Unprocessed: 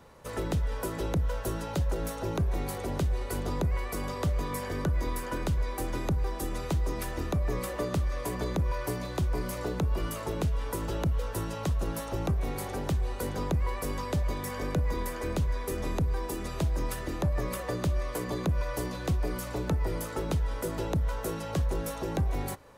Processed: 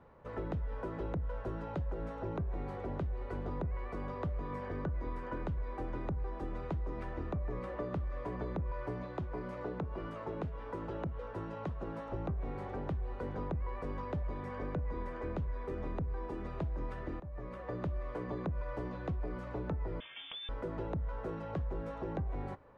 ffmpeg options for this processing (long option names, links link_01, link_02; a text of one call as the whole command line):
ffmpeg -i in.wav -filter_complex "[0:a]asettb=1/sr,asplit=3[link_01][link_02][link_03];[link_01]atrim=end=9.034[link_04];[link_02]atrim=start=9.03:end=12.1,asetpts=PTS-STARTPTS,afade=type=in:duration=0.004:curve=qsin,afade=type=out:start_time=3.066:duration=0.004:curve=qsin,highpass=frequency=130:poles=1[link_05];[link_03]atrim=start=12.096[link_06];[link_04][link_05]acrossfade=duration=0.004:curve1=hsin:curve2=qsin[link_07];[link_07][link_06]acrossfade=duration=0.004:curve1=qsin:curve2=hsin,asettb=1/sr,asplit=3[link_08][link_09][link_10];[link_08]atrim=end=20.004[link_11];[link_09]atrim=start=20:end=20.49,asetpts=PTS-STARTPTS,afade=type=in:duration=0.004:curve=qsin,afade=type=out:start_time=0.486:duration=0.004:curve=qsin,lowpass=frequency=3100:width_type=q:width=0.5098,lowpass=frequency=3100:width_type=q:width=0.6013,lowpass=frequency=3100:width_type=q:width=0.9,lowpass=frequency=3100:width_type=q:width=2.563,afreqshift=-3600[link_12];[link_10]atrim=start=20.486[link_13];[link_11][link_12]acrossfade=duration=0.004:curve1=hsin:curve2=qsin[link_14];[link_14][link_13]acrossfade=duration=0.004:curve1=qsin:curve2=hsin,asplit=2[link_15][link_16];[link_15]atrim=end=17.2,asetpts=PTS-STARTPTS,afade=type=out:start_time=17.196:duration=0.004:curve=hsin:silence=0.125893[link_17];[link_16]atrim=start=17.2,asetpts=PTS-STARTPTS,afade=type=in:duration=0.64:silence=0.125893[link_18];[link_17][link_18]concat=n=2:v=0:a=1,lowpass=1700,acompressor=threshold=-28dB:ratio=6,volume=-5dB" out.wav